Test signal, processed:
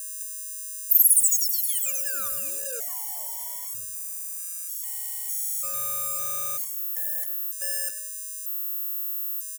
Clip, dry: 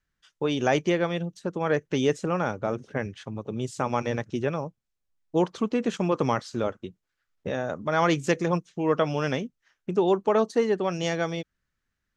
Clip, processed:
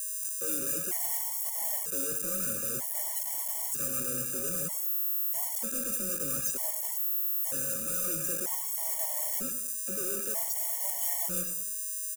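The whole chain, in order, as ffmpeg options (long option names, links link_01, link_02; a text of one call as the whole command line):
ffmpeg -i in.wav -filter_complex "[0:a]highpass=130,afftdn=noise_reduction=36:noise_floor=-33,acrossover=split=3300[link_01][link_02];[link_02]acompressor=threshold=-35dB:ratio=4:attack=1:release=60[link_03];[link_01][link_03]amix=inputs=2:normalize=0,lowshelf=frequency=360:gain=2.5,areverse,acompressor=threshold=-33dB:ratio=4,areverse,afreqshift=15,asoftclip=type=hard:threshold=-37.5dB,aeval=exprs='val(0)+0.00794*sin(2*PI*550*n/s)':channel_layout=same,acrusher=bits=6:mix=0:aa=0.000001,aexciter=amount=8.6:drive=8.8:freq=6200,asplit=2[link_04][link_05];[link_05]adelay=99,lowpass=frequency=4500:poles=1,volume=-9dB,asplit=2[link_06][link_07];[link_07]adelay=99,lowpass=frequency=4500:poles=1,volume=0.41,asplit=2[link_08][link_09];[link_09]adelay=99,lowpass=frequency=4500:poles=1,volume=0.41,asplit=2[link_10][link_11];[link_11]adelay=99,lowpass=frequency=4500:poles=1,volume=0.41,asplit=2[link_12][link_13];[link_13]adelay=99,lowpass=frequency=4500:poles=1,volume=0.41[link_14];[link_06][link_08][link_10][link_12][link_14]amix=inputs=5:normalize=0[link_15];[link_04][link_15]amix=inputs=2:normalize=0,afftfilt=real='re*gt(sin(2*PI*0.53*pts/sr)*(1-2*mod(floor(b*sr/1024/580),2)),0)':imag='im*gt(sin(2*PI*0.53*pts/sr)*(1-2*mod(floor(b*sr/1024/580),2)),0)':win_size=1024:overlap=0.75" out.wav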